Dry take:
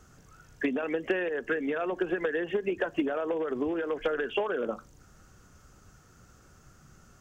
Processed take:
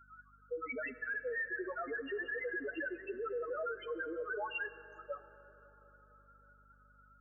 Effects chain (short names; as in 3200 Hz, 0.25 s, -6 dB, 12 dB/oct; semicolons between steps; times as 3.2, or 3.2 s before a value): slices in reverse order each 0.104 s, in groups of 5; HPF 1400 Hz 12 dB/oct; tilt -3.5 dB/oct; loudest bins only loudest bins 2; hum 50 Hz, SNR 28 dB; limiter -43.5 dBFS, peak gain reduction 9.5 dB; plate-style reverb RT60 4.4 s, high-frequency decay 0.35×, DRR 14 dB; gain +11 dB